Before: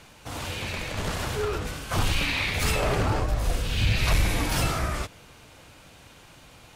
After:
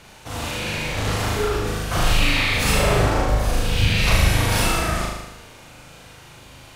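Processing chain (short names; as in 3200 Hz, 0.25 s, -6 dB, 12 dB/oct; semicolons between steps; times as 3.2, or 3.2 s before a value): flutter echo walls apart 6.6 m, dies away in 1 s; gain +2.5 dB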